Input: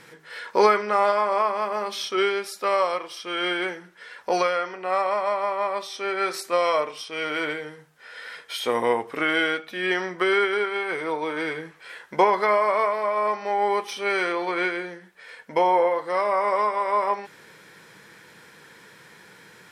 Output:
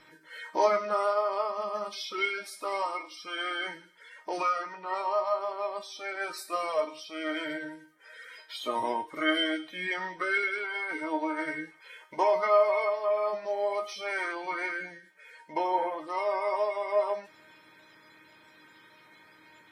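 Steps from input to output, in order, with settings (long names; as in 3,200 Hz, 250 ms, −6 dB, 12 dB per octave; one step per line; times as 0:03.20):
spectral magnitudes quantised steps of 30 dB
tuned comb filter 310 Hz, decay 0.26 s, harmonics all, mix 90%
delay with a high-pass on its return 104 ms, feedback 46%, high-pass 2,900 Hz, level −16 dB
level +6 dB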